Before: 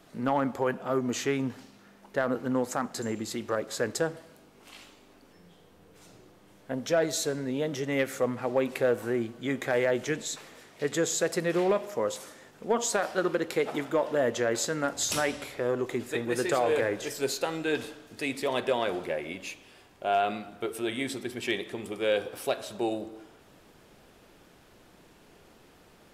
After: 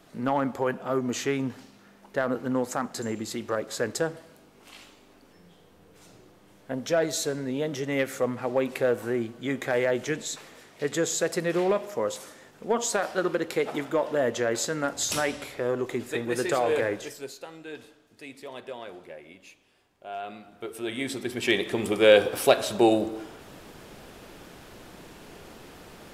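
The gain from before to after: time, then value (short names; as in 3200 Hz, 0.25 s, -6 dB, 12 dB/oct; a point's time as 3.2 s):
16.93 s +1 dB
17.33 s -11.5 dB
20.09 s -11.5 dB
20.98 s +0.5 dB
21.86 s +10 dB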